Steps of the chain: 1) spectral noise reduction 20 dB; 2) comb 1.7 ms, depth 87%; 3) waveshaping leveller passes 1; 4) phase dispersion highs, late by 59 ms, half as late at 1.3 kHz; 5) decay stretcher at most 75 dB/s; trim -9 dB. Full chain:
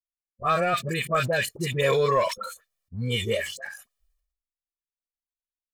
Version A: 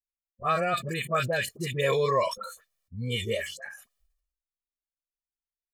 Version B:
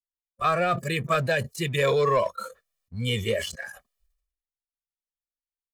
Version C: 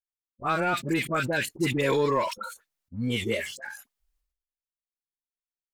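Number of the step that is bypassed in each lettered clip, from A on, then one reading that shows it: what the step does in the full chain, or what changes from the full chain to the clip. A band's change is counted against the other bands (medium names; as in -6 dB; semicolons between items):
3, loudness change -3.0 LU; 4, 8 kHz band -2.5 dB; 2, 250 Hz band +8.0 dB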